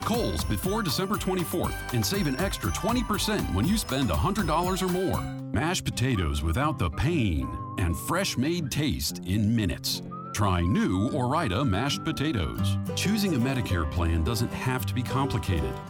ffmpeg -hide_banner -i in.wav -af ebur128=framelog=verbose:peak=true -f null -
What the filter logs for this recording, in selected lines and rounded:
Integrated loudness:
  I:         -27.1 LUFS
  Threshold: -37.1 LUFS
Loudness range:
  LRA:         1.1 LU
  Threshold: -47.0 LUFS
  LRA low:   -27.6 LUFS
  LRA high:  -26.5 LUFS
True peak:
  Peak:      -12.8 dBFS